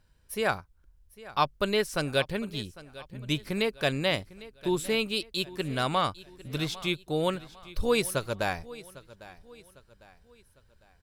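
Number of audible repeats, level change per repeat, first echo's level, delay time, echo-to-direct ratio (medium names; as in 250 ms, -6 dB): 3, -7.5 dB, -18.5 dB, 802 ms, -17.5 dB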